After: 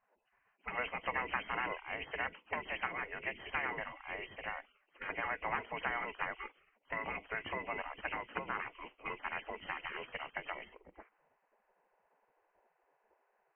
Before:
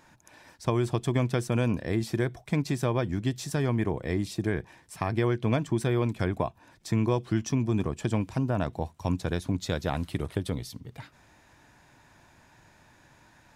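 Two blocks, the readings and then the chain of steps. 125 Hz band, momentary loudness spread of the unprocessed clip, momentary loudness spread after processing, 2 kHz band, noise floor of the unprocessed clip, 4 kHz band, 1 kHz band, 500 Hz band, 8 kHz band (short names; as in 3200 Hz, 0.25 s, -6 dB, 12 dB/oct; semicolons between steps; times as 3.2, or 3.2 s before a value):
-30.0 dB, 7 LU, 9 LU, +1.5 dB, -59 dBFS, -8.0 dB, -3.0 dB, -14.5 dB, under -35 dB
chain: nonlinear frequency compression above 1900 Hz 4:1; low-pass opened by the level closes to 330 Hz, open at -23.5 dBFS; spectral gate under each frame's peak -20 dB weak; gain +4.5 dB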